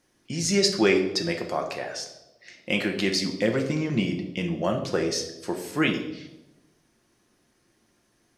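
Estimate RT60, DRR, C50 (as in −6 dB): 1.0 s, 2.5 dB, 8.5 dB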